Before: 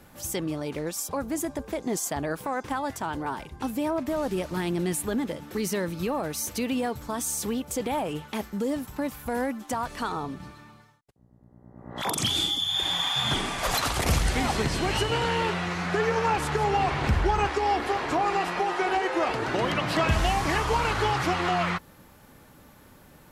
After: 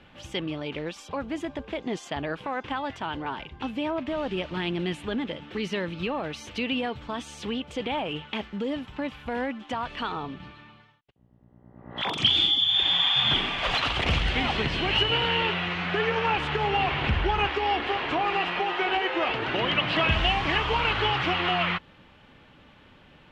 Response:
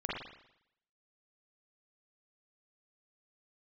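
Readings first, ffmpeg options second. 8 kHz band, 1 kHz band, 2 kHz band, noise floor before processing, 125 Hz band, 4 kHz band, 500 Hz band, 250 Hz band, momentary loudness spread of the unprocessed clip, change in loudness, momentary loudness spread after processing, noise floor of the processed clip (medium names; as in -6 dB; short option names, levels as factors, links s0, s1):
-16.5 dB, -1.0 dB, +3.0 dB, -54 dBFS, -2.0 dB, +5.5 dB, -2.0 dB, -2.0 dB, 8 LU, +1.0 dB, 13 LU, -55 dBFS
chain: -af "lowpass=f=3000:t=q:w=3.5,volume=0.794"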